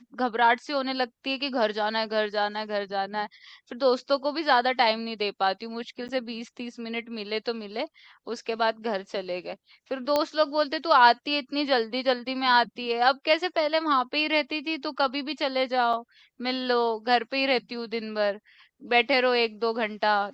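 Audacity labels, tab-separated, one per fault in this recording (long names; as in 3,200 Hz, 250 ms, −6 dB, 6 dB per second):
6.080000	6.090000	drop-out 9.3 ms
10.160000	10.160000	click −10 dBFS
15.930000	15.930000	drop-out 4.7 ms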